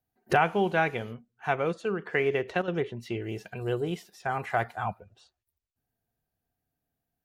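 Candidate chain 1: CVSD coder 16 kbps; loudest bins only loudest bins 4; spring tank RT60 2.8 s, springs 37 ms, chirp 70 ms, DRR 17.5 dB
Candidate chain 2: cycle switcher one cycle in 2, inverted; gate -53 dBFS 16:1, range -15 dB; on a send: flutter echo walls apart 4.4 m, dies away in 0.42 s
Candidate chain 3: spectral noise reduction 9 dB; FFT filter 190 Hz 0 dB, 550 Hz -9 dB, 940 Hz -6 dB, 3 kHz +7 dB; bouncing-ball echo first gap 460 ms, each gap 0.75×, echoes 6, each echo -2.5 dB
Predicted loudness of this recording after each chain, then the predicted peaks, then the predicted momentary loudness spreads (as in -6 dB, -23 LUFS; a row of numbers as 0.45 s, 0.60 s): -34.0 LUFS, -27.0 LUFS, -31.5 LUFS; -18.0 dBFS, -7.0 dBFS, -12.5 dBFS; 11 LU, 11 LU, 13 LU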